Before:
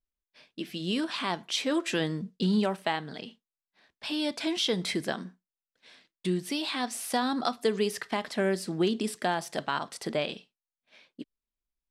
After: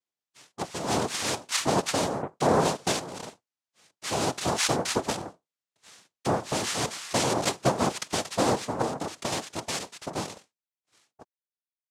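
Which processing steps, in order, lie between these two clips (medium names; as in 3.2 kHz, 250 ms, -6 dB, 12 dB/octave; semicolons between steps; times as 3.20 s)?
fade out at the end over 3.12 s; 8.81–9.32 s: compression 6:1, threshold -30 dBFS, peak gain reduction 8 dB; noise-vocoded speech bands 2; trim +2.5 dB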